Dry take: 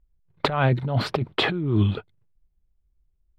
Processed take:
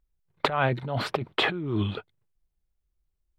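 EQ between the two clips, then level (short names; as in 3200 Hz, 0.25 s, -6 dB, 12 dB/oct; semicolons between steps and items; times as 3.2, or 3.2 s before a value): dynamic EQ 4600 Hz, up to -5 dB, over -41 dBFS, Q 2; low shelf 290 Hz -9.5 dB; 0.0 dB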